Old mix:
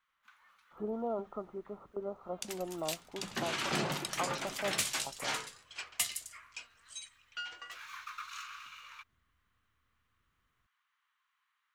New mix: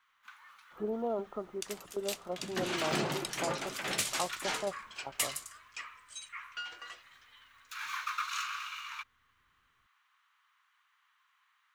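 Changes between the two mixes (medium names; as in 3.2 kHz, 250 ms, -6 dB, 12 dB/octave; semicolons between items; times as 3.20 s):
first sound +8.5 dB; second sound: entry -0.80 s; master: add peaking EQ 400 Hz +3 dB 1.2 oct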